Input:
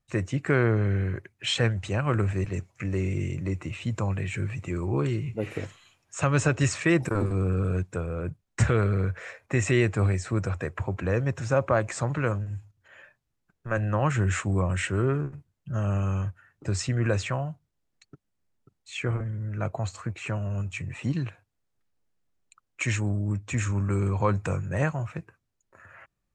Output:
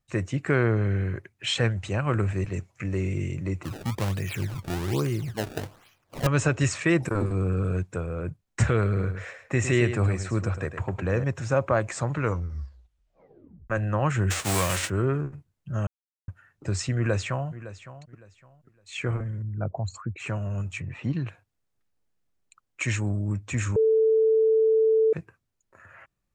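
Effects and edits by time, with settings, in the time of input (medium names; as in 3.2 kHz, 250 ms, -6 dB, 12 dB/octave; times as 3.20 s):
3.63–6.27 s: decimation with a swept rate 24×, swing 160% 1.2 Hz
8.86–11.24 s: delay 107 ms -10 dB
12.18 s: tape stop 1.52 s
14.30–14.88 s: formants flattened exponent 0.3
15.87–16.28 s: mute
16.95–17.49 s: echo throw 560 ms, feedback 25%, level -15 dB
19.42–20.20 s: resonances exaggerated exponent 2
20.80–21.27 s: distance through air 150 m
23.76–25.13 s: bleep 442 Hz -17 dBFS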